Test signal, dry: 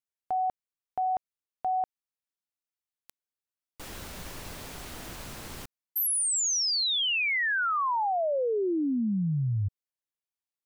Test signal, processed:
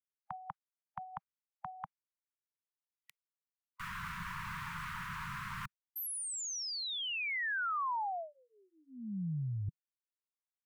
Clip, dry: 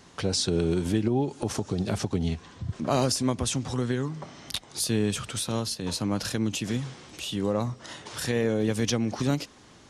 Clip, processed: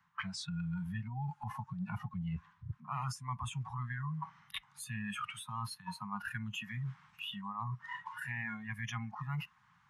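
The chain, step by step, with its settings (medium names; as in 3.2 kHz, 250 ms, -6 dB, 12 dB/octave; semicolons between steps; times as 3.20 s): inverse Chebyshev band-stop 280–580 Hz, stop band 50 dB; spectral noise reduction 19 dB; three-band isolator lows -17 dB, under 160 Hz, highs -22 dB, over 2 kHz; reverse; compression 4:1, threshold -51 dBFS; reverse; trim +12.5 dB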